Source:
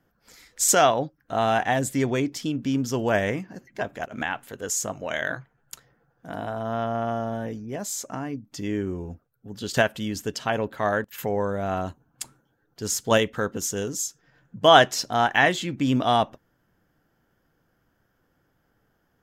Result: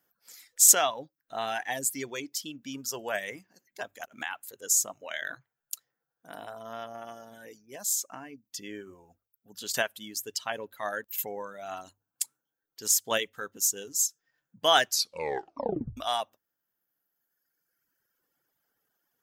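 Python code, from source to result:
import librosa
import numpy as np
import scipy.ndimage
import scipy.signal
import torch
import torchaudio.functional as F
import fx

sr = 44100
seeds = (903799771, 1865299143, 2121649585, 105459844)

y = fx.edit(x, sr, fx.tape_stop(start_s=14.87, length_s=1.1), tone=tone)
y = fx.dereverb_blind(y, sr, rt60_s=1.9)
y = fx.riaa(y, sr, side='recording')
y = fx.hum_notches(y, sr, base_hz=50, count=2)
y = y * 10.0 ** (-7.5 / 20.0)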